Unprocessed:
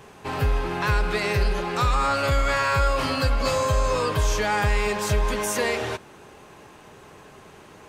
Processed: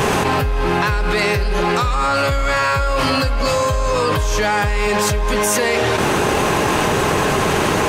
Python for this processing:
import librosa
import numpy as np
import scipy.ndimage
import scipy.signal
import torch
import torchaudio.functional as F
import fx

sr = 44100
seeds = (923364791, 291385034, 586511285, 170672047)

y = fx.env_flatten(x, sr, amount_pct=100)
y = y * librosa.db_to_amplitude(1.5)